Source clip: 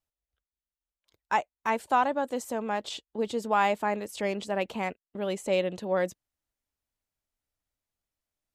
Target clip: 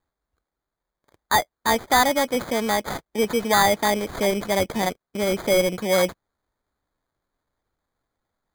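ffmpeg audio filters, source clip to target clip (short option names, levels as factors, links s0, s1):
-af "acrusher=samples=16:mix=1:aa=0.000001,aeval=exprs='0.224*(cos(1*acos(clip(val(0)/0.224,-1,1)))-cos(1*PI/2))+0.02*(cos(5*acos(clip(val(0)/0.224,-1,1)))-cos(5*PI/2))':c=same,volume=1.88"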